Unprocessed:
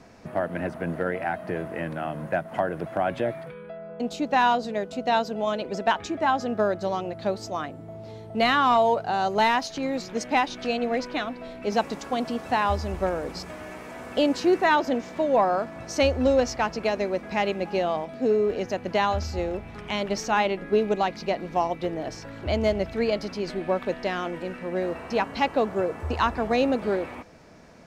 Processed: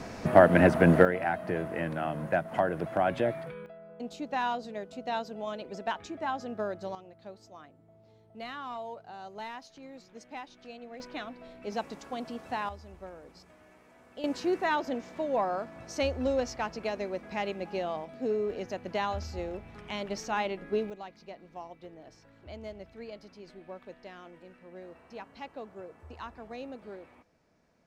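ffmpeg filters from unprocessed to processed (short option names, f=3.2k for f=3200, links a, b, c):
-af "asetnsamples=n=441:p=0,asendcmd='1.05 volume volume -1.5dB;3.66 volume volume -10dB;6.95 volume volume -19.5dB;11 volume volume -10dB;12.69 volume volume -19dB;14.24 volume volume -8dB;20.9 volume volume -19dB',volume=9.5dB"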